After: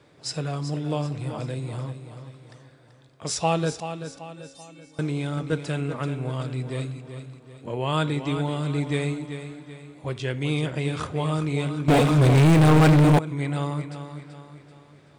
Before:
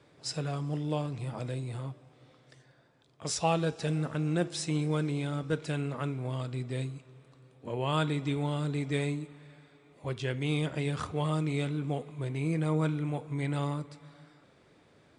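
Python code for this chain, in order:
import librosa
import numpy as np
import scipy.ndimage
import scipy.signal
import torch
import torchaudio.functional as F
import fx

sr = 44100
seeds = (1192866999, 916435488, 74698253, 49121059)

y = fx.stiff_resonator(x, sr, f0_hz=270.0, decay_s=0.68, stiffness=0.008, at=(3.8, 4.99))
y = fx.echo_feedback(y, sr, ms=384, feedback_pct=44, wet_db=-10.0)
y = fx.leveller(y, sr, passes=5, at=(11.88, 13.19))
y = F.gain(torch.from_numpy(y), 4.5).numpy()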